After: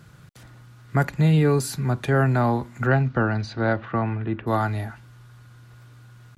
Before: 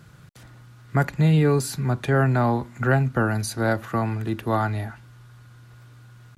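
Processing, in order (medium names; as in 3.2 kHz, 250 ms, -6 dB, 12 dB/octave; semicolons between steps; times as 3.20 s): 2.86–4.46 s: low-pass 6 kHz -> 2.6 kHz 24 dB/octave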